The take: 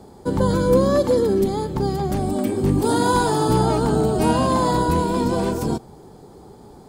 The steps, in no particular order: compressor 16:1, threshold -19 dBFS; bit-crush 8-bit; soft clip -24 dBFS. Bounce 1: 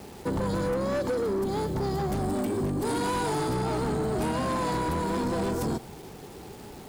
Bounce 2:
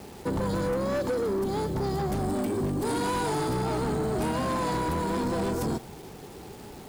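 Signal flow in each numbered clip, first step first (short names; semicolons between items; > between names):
bit-crush > compressor > soft clip; compressor > bit-crush > soft clip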